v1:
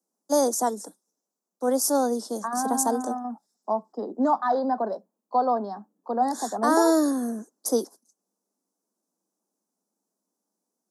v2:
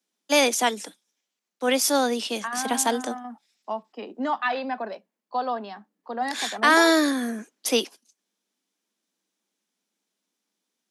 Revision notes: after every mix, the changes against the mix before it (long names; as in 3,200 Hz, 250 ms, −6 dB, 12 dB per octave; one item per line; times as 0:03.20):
second voice −5.5 dB
master: remove Butterworth band-reject 2,600 Hz, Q 0.5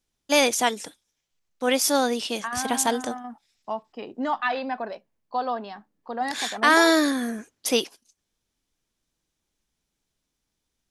master: remove Butterworth high-pass 180 Hz 96 dB per octave